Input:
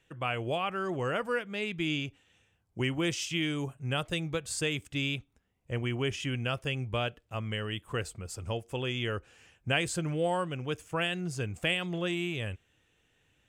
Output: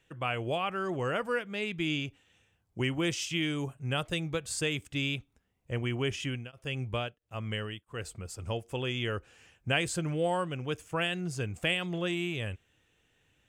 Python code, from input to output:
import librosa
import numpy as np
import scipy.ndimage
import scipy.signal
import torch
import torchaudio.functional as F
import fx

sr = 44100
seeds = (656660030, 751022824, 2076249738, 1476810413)

y = fx.tremolo_abs(x, sr, hz=1.5, at=(6.19, 8.39))